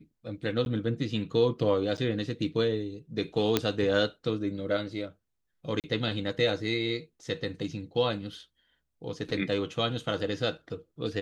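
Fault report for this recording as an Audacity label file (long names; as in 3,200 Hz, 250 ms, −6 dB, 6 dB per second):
0.650000	0.660000	drop-out
1.970000	1.980000	drop-out 8.1 ms
3.570000	3.570000	click −8 dBFS
5.800000	5.840000	drop-out 38 ms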